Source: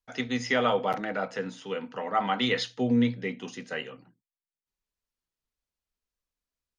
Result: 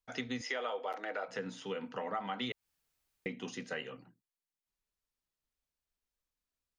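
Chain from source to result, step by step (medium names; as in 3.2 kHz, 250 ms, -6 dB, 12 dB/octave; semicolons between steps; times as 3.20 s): 0.41–1.28 s: high-pass 350 Hz 24 dB/octave; 2.52–3.26 s: room tone; compression 5:1, threshold -33 dBFS, peak gain reduction 11.5 dB; trim -2 dB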